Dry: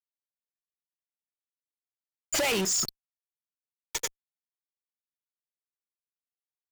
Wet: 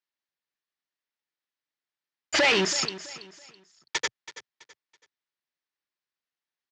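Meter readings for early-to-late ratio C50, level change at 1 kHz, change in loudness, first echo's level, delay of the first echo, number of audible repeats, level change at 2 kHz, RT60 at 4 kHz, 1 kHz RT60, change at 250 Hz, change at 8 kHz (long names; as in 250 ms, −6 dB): no reverb audible, +6.0 dB, +3.5 dB, −15.0 dB, 329 ms, 3, +8.5 dB, no reverb audible, no reverb audible, +3.0 dB, −3.0 dB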